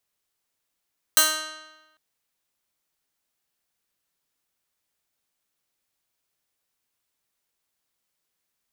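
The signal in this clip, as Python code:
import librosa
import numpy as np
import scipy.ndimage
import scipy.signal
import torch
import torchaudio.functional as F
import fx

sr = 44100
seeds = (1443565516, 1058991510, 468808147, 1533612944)

y = fx.pluck(sr, length_s=0.8, note=63, decay_s=1.11, pick=0.13, brightness='bright')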